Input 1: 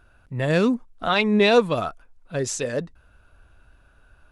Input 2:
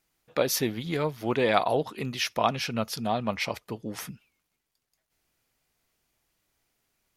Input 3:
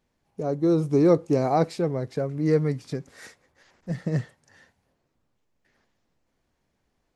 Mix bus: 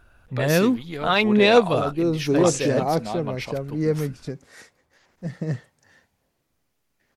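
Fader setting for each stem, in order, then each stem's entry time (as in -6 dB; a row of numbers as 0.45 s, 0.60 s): +1.0 dB, -3.5 dB, -1.0 dB; 0.00 s, 0.00 s, 1.35 s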